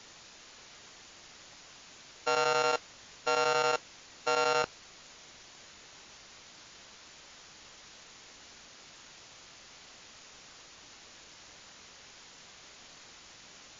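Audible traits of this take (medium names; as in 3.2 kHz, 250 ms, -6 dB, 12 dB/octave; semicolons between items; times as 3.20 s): a buzz of ramps at a fixed pitch in blocks of 32 samples; chopped level 11 Hz, depth 60%, duty 85%; a quantiser's noise floor 8-bit, dither triangular; MP3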